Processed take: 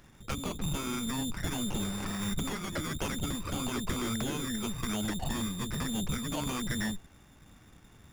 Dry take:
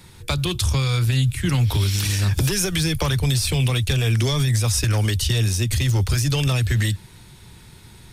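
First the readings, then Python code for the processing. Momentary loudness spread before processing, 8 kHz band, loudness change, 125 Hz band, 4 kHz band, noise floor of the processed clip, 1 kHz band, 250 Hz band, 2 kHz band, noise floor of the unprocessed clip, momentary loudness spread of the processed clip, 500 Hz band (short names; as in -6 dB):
2 LU, -11.5 dB, -13.5 dB, -20.0 dB, -13.0 dB, -58 dBFS, -5.5 dB, -6.0 dB, -11.0 dB, -46 dBFS, 2 LU, -10.5 dB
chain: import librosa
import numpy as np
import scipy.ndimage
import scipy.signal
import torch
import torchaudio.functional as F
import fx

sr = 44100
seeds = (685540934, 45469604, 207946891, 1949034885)

y = fx.freq_invert(x, sr, carrier_hz=3700)
y = fx.running_max(y, sr, window=9)
y = y * librosa.db_to_amplitude(-8.5)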